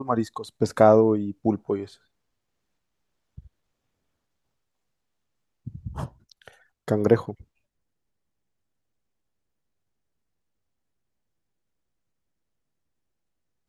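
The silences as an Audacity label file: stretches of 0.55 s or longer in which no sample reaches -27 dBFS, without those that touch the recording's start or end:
1.840000	5.680000	silence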